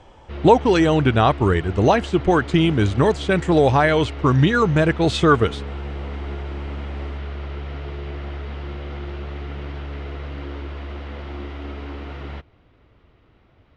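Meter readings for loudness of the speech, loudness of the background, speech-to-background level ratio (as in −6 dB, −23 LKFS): −18.0 LKFS, −32.5 LKFS, 14.5 dB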